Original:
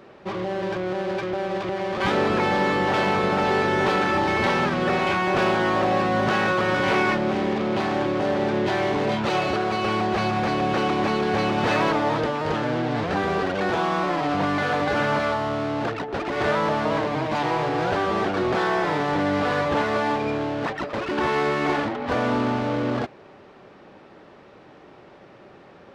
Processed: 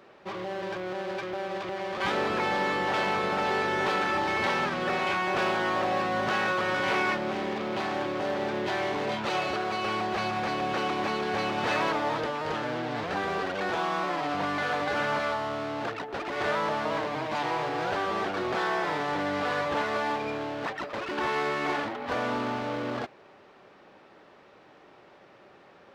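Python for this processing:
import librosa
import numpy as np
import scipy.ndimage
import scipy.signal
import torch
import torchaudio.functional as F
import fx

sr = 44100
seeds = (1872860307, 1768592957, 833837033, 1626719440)

y = fx.low_shelf(x, sr, hz=390.0, db=-8.5)
y = fx.quant_float(y, sr, bits=6)
y = F.gain(torch.from_numpy(y), -3.5).numpy()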